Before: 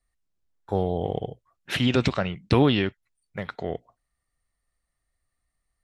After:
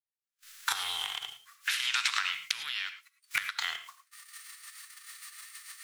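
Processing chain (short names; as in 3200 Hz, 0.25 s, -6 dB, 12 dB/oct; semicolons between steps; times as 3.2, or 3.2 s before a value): spectral whitening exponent 0.6; recorder AGC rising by 62 dB/s; gate -48 dBFS, range -31 dB; inverse Chebyshev high-pass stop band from 620 Hz, stop band 40 dB; compressor 10:1, threshold -28 dBFS, peak gain reduction 16.5 dB; rotary speaker horn 0.85 Hz, later 6.7 Hz, at 3.17; non-linear reverb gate 0.13 s rising, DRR 10 dB; gain +4.5 dB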